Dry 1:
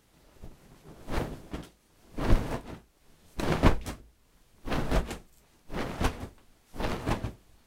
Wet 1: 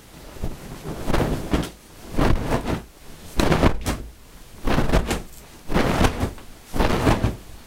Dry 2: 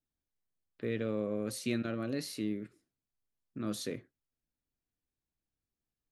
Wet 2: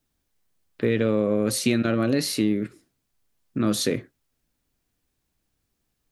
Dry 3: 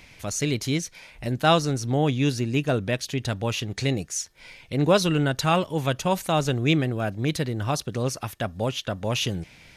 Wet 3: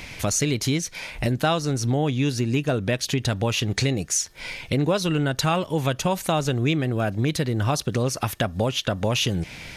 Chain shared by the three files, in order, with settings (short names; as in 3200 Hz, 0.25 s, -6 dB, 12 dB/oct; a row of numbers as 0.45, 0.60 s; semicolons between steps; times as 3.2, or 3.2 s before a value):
compressor 5:1, threshold -32 dBFS; core saturation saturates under 90 Hz; match loudness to -24 LUFS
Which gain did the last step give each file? +18.5, +15.0, +11.5 dB